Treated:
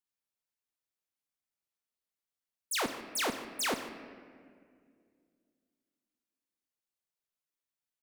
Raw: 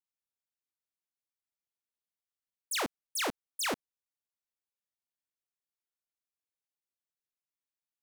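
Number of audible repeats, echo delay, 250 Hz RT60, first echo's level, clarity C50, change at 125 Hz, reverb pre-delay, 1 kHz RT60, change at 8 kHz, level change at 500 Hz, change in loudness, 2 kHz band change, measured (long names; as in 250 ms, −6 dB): 1, 150 ms, 3.0 s, −15.5 dB, 8.5 dB, +1.0 dB, 5 ms, 1.9 s, +0.5 dB, +1.0 dB, +0.5 dB, +1.0 dB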